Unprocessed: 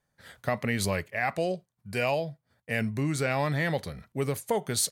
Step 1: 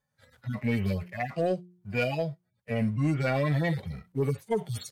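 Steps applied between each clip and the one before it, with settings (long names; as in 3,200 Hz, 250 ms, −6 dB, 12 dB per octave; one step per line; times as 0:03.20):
harmonic-percussive split with one part muted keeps harmonic
leveller curve on the samples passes 1
hum removal 178.2 Hz, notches 2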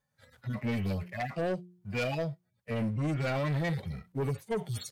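soft clipping −26.5 dBFS, distortion −13 dB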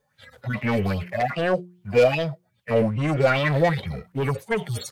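auto-filter bell 2.5 Hz 440–3,300 Hz +15 dB
level +6.5 dB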